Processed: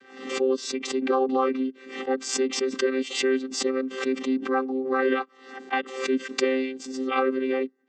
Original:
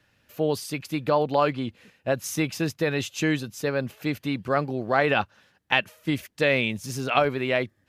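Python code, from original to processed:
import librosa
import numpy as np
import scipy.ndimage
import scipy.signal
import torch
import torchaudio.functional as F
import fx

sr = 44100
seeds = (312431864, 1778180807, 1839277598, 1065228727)

y = fx.chord_vocoder(x, sr, chord='bare fifth', root=60)
y = fx.dynamic_eq(y, sr, hz=1300.0, q=3.2, threshold_db=-44.0, ratio=4.0, max_db=5)
y = fx.pre_swell(y, sr, db_per_s=85.0)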